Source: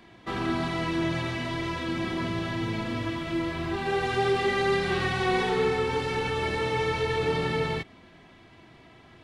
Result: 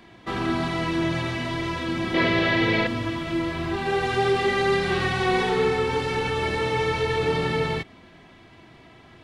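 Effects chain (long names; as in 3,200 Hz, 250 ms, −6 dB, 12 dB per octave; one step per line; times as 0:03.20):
0:02.14–0:02.87: octave-band graphic EQ 500/2,000/4,000/8,000 Hz +12/+11/+7/−4 dB
level +3 dB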